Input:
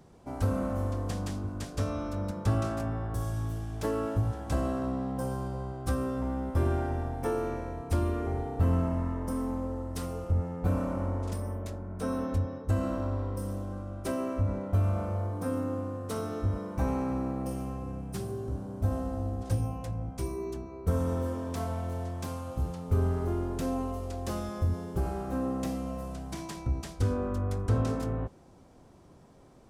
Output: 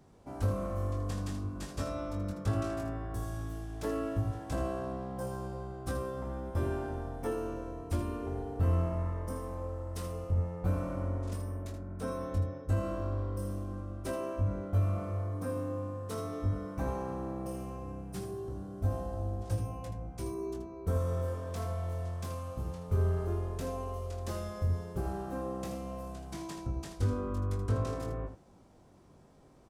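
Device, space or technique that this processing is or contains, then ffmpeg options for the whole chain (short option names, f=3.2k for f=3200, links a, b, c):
slapback doubling: -filter_complex "[0:a]asettb=1/sr,asplit=3[a][b][c];[a]atrim=end=1.544[d];[b]atrim=start=1.54:end=2.11,asetpts=PTS-STARTPTS,afade=t=in:d=0.004:c=qsin,afade=t=out:st=0.566:d=0.004:c=qsin,asplit=2[e][f];[f]adelay=15,volume=-3.5dB[g];[e][g]amix=inputs=2:normalize=0,atrim=end_sample=25137[h];[c]atrim=start=2.106[i];[d][h]acrossfade=d=0.004:c1=hsin:c2=qsin[j];[j][i]acrossfade=d=0.004:c1=qsin:c2=hsin,asplit=3[k][l][m];[l]adelay=21,volume=-5.5dB[n];[m]adelay=79,volume=-9dB[o];[k][n][o]amix=inputs=3:normalize=0,volume=-5dB"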